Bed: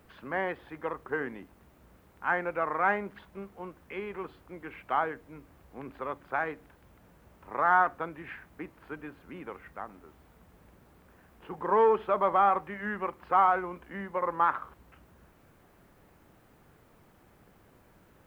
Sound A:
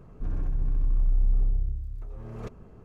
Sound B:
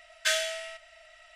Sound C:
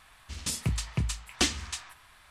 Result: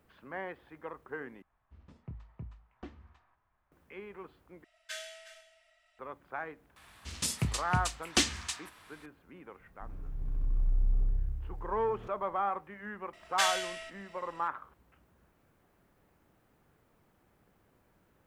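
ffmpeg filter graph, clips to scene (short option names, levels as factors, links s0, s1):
-filter_complex "[3:a]asplit=2[s0][s1];[2:a]asplit=2[s2][s3];[0:a]volume=0.376[s4];[s0]lowpass=1000[s5];[s2]aecho=1:1:361:0.178[s6];[s1]highpass=f=88:p=1[s7];[1:a]dynaudnorm=f=150:g=9:m=4.22[s8];[s4]asplit=3[s9][s10][s11];[s9]atrim=end=1.424[s12];[s5]atrim=end=2.3,asetpts=PTS-STARTPTS,volume=0.168[s13];[s10]atrim=start=3.716:end=4.644[s14];[s6]atrim=end=1.35,asetpts=PTS-STARTPTS,volume=0.168[s15];[s11]atrim=start=5.986[s16];[s7]atrim=end=2.3,asetpts=PTS-STARTPTS,volume=0.944,afade=t=in:d=0.004:c=hsin,afade=t=out:st=2.296:d=0.004:c=hsin,adelay=6760[s17];[s8]atrim=end=2.84,asetpts=PTS-STARTPTS,volume=0.15,afade=t=in:d=0.004:c=hsin,afade=t=out:st=2.836:d=0.004:c=hsin,adelay=9600[s18];[s3]atrim=end=1.35,asetpts=PTS-STARTPTS,volume=0.708,afade=t=in:d=0.004:c=hsin,afade=t=out:st=1.346:d=0.004:c=hsin,adelay=13130[s19];[s12][s13]acrossfade=d=0.004:c1=hsin:c2=hsin[s20];[s20][s14]acrossfade=d=0.004:c1=hsin:c2=hsin[s21];[s21][s15]acrossfade=d=0.004:c1=hsin:c2=hsin[s22];[s22][s16]acrossfade=d=0.004:c1=hsin:c2=hsin[s23];[s23][s17][s18][s19]amix=inputs=4:normalize=0"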